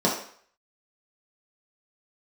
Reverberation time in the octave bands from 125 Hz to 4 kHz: 0.40 s, 0.45 s, 0.50 s, 0.55 s, 0.55 s, 0.50 s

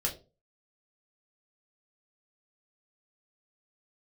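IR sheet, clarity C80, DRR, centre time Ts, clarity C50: 16.5 dB, -1.5 dB, 16 ms, 12.5 dB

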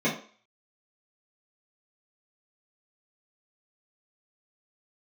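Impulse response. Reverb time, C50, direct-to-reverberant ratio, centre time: 0.45 s, 8.0 dB, -9.5 dB, 25 ms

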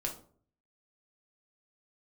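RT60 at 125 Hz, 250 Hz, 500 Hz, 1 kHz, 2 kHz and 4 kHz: 0.75 s, 0.60 s, 0.55 s, 0.45 s, 0.30 s, 0.30 s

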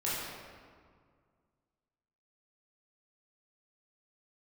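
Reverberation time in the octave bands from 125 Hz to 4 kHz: 2.5 s, 2.3 s, 2.0 s, 1.9 s, 1.5 s, 1.1 s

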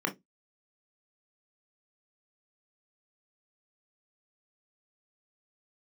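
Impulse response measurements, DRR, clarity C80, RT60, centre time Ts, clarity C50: 2.5 dB, 27.5 dB, 0.15 s, 11 ms, 16.5 dB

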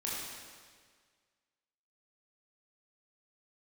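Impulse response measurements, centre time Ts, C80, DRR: 111 ms, 0.5 dB, -6.5 dB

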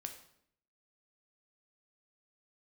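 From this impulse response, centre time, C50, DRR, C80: 15 ms, 9.0 dB, 5.0 dB, 12.0 dB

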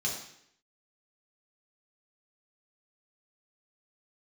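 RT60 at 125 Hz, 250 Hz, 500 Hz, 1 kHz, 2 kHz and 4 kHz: 0.70 s, 0.75 s, 0.70 s, 0.70 s, 0.75 s, 0.70 s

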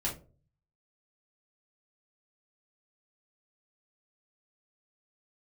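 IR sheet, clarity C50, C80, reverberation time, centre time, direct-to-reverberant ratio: 9.0 dB, 17.0 dB, 0.40 s, 23 ms, -4.5 dB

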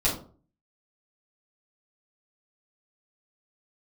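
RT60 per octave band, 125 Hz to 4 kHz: 0.60 s, 0.50 s, 0.45 s, 0.40 s, 0.25 s, 0.25 s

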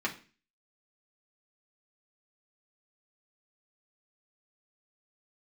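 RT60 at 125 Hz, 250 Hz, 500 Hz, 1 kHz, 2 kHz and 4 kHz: 0.50 s, 0.45 s, 0.40 s, 0.35 s, 0.40 s, 0.40 s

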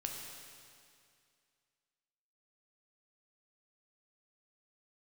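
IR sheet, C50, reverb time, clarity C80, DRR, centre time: 2.0 dB, 2.3 s, 3.0 dB, 0.5 dB, 88 ms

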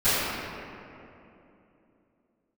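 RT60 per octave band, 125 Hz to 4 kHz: 3.3 s, 3.7 s, 3.2 s, 2.6 s, 2.3 s, 1.5 s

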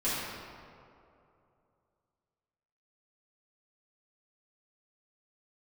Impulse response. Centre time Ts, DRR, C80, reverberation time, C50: 139 ms, -12.0 dB, -0.5 dB, 2.7 s, -3.0 dB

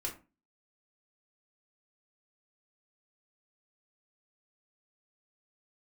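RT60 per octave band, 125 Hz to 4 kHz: 0.40 s, 0.40 s, 0.30 s, 0.30 s, 0.25 s, 0.20 s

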